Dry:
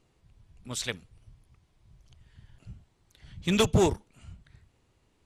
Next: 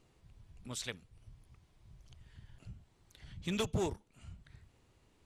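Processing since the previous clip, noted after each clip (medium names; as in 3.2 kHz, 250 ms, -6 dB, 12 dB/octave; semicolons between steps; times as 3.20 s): compression 1.5:1, threshold -52 dBFS, peak gain reduction 12 dB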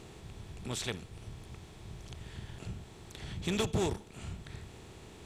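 spectral levelling over time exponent 0.6; trim +1 dB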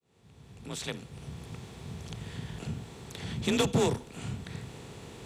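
fade-in on the opening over 1.55 s; frequency shift +37 Hz; trim +5 dB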